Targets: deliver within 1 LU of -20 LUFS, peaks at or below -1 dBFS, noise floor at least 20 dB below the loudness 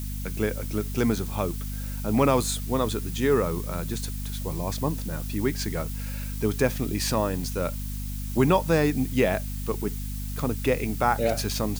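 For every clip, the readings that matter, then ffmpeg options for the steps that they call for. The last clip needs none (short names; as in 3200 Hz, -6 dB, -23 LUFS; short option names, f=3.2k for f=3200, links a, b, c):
hum 50 Hz; harmonics up to 250 Hz; hum level -30 dBFS; noise floor -32 dBFS; noise floor target -47 dBFS; loudness -27.0 LUFS; peak -8.0 dBFS; loudness target -20.0 LUFS
-> -af "bandreject=f=50:t=h:w=4,bandreject=f=100:t=h:w=4,bandreject=f=150:t=h:w=4,bandreject=f=200:t=h:w=4,bandreject=f=250:t=h:w=4"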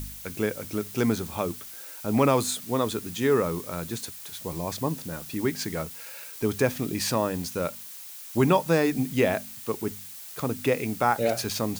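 hum none; noise floor -42 dBFS; noise floor target -48 dBFS
-> -af "afftdn=nr=6:nf=-42"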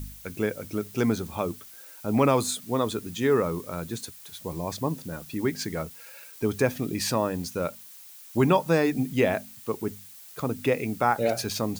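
noise floor -47 dBFS; noise floor target -48 dBFS
-> -af "afftdn=nr=6:nf=-47"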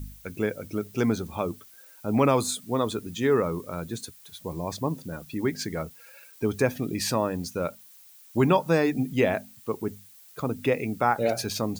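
noise floor -52 dBFS; loudness -27.5 LUFS; peak -9.0 dBFS; loudness target -20.0 LUFS
-> -af "volume=7.5dB"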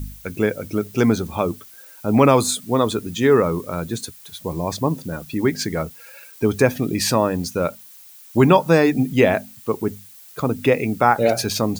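loudness -20.0 LUFS; peak -1.5 dBFS; noise floor -44 dBFS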